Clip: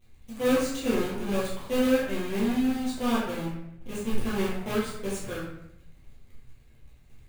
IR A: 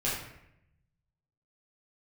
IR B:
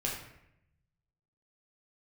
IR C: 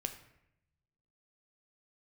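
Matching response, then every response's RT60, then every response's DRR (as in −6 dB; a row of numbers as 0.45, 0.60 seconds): A; 0.80, 0.80, 0.80 seconds; −9.0, −4.0, 6.0 decibels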